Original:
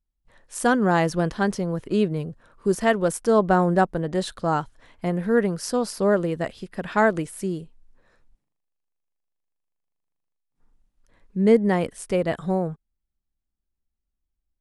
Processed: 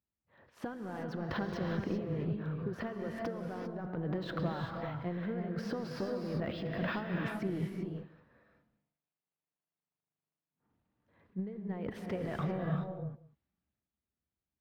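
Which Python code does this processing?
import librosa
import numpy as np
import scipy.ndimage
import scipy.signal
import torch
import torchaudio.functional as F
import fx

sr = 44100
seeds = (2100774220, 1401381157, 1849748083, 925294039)

y = scipy.signal.sosfilt(scipy.signal.butter(4, 81.0, 'highpass', fs=sr, output='sos'), x)
y = fx.high_shelf(y, sr, hz=6700.0, db=5.0)
y = fx.transient(y, sr, attack_db=-11, sustain_db=9)
y = fx.over_compress(y, sr, threshold_db=-30.0, ratio=-1.0)
y = np.clip(y, -10.0 ** (-20.5 / 20.0), 10.0 ** (-20.5 / 20.0))
y = fx.air_absorb(y, sr, metres=340.0)
y = y + 10.0 ** (-20.0 / 20.0) * np.pad(y, (int(187 * sr / 1000.0), 0))[:len(y)]
y = fx.rev_gated(y, sr, seeds[0], gate_ms=420, shape='rising', drr_db=1.5)
y = np.interp(np.arange(len(y)), np.arange(len(y))[::2], y[::2])
y = y * librosa.db_to_amplitude(-7.5)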